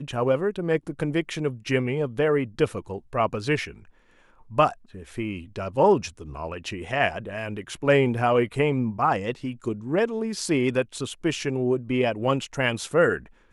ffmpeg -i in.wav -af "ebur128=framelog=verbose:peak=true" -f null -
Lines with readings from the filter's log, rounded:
Integrated loudness:
  I:         -25.2 LUFS
  Threshold: -35.5 LUFS
Loudness range:
  LRA:         2.8 LU
  Threshold: -45.6 LUFS
  LRA low:   -27.0 LUFS
  LRA high:  -24.2 LUFS
True peak:
  Peak:       -7.1 dBFS